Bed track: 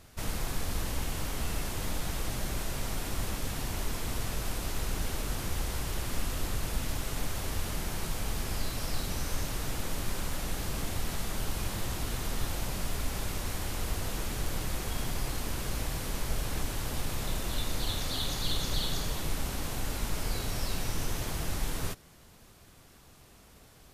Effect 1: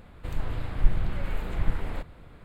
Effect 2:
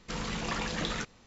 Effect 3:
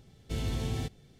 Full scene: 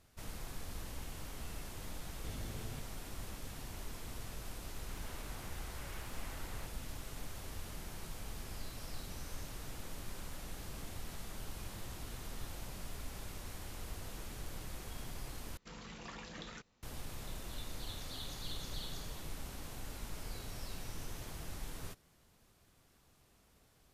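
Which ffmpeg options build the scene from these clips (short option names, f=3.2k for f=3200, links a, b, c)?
-filter_complex "[0:a]volume=-12dB[a];[1:a]highpass=710[b];[a]asplit=2[c][d];[c]atrim=end=15.574[e];[2:a]atrim=end=1.26,asetpts=PTS-STARTPTS,volume=-15dB[f];[d]atrim=start=16.826[g];[3:a]atrim=end=1.19,asetpts=PTS-STARTPTS,volume=-14.5dB,afade=t=in:d=0.004:c=hsin,afade=t=out:st=1.186:d=0.004:c=hsin,adelay=1930[h];[b]atrim=end=2.44,asetpts=PTS-STARTPTS,volume=-10dB,afade=t=in:d=0.004:c=hsin,afade=t=out:st=2.436:d=0.004:c=hsin,adelay=205065S[i];[e][f]acrossfade=d=0.004:c1=hsin:c2=hsin[j];[j][g]acrossfade=d=0.004:c1=hsin:c2=hsin[k];[k][h][i]amix=inputs=3:normalize=0"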